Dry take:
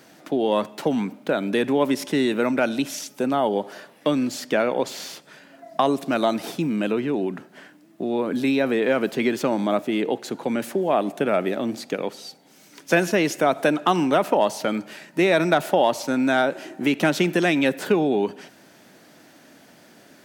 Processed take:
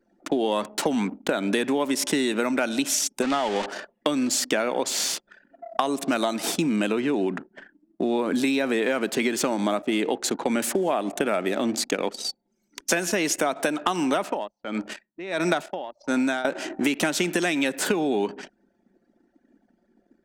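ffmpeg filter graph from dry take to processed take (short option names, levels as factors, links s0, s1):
-filter_complex "[0:a]asettb=1/sr,asplit=3[s0][s1][s2];[s0]atrim=end=3.224[s3];[s1]atrim=start=3.22:end=3.66,asetpts=PTS-STARTPTS,afade=t=in:d=0.004:c=qsin,afade=t=out:st=0.436:d=0.004:c=qsin,aeval=exprs='val(0)+0.5*0.0473*sgn(val(0))':c=same,lowpass=3300,tiltshelf=f=1500:g=-5.5[s4];[s2]atrim=start=3.656[s5];[s3][s4]acrossfade=d=0.004:c1=hsin:c2=qsin[s6];[s6][s5]acrossfade=d=0.004:c1=qsin:c2=hsin,asettb=1/sr,asplit=3[s7][s8][s9];[s7]atrim=end=14.214[s10];[s8]atrim=start=14.21:end=16.45,asetpts=PTS-STARTPTS,afade=t=in:d=0.004:c=qsin,afade=t=out:st=2.236:d=0.004:c=qsin,acrossover=split=6500[s11][s12];[s12]acompressor=threshold=0.00562:ratio=4:attack=1:release=60[s13];[s11][s13]amix=inputs=2:normalize=0,aeval=exprs='val(0)*pow(10,-22*(0.5-0.5*cos(2*PI*1.5*n/s))/20)':c=same[s14];[s9]atrim=start=16.446[s15];[s10][s14]acrossfade=d=0.004:c1=hsin:c2=qsin[s16];[s16][s15]acrossfade=d=0.004:c1=qsin:c2=hsin,anlmdn=0.398,equalizer=f=125:t=o:w=1:g=-10,equalizer=f=500:t=o:w=1:g=-3,equalizer=f=8000:t=o:w=1:g=9,acompressor=threshold=0.0447:ratio=10,volume=2.24"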